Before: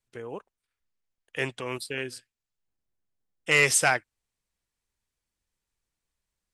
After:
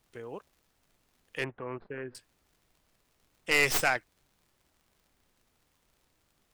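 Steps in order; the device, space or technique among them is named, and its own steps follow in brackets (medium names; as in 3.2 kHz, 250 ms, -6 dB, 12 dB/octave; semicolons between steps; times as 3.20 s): record under a worn stylus (tracing distortion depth 0.13 ms; crackle; pink noise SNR 36 dB); 1.44–2.15 s: inverse Chebyshev low-pass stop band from 8.9 kHz, stop band 80 dB; trim -4 dB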